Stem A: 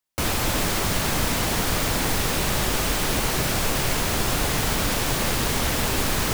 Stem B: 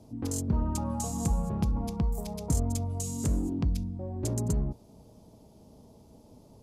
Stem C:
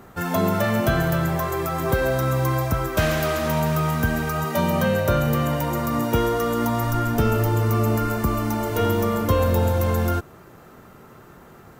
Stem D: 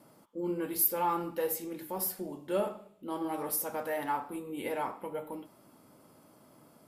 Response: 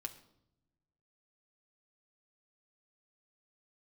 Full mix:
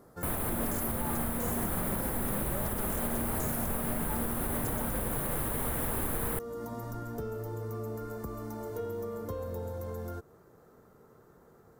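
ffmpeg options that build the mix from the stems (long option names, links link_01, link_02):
-filter_complex "[0:a]firequalizer=gain_entry='entry(2800,0);entry(5400,-23);entry(10000,5)':delay=0.05:min_phase=1,adelay=50,volume=-3dB[link_01];[1:a]equalizer=frequency=230:width_type=o:width=0.35:gain=13.5,asoftclip=type=hard:threshold=-31.5dB,adelay=400,volume=2dB[link_02];[2:a]equalizer=frequency=460:width_type=o:width=0.34:gain=8.5,acompressor=threshold=-23dB:ratio=2.5,volume=-13.5dB[link_03];[3:a]volume=-4dB[link_04];[link_01][link_02][link_03][link_04]amix=inputs=4:normalize=0,equalizer=frequency=2700:width_type=o:width=0.86:gain=-12,alimiter=limit=-22dB:level=0:latency=1:release=276"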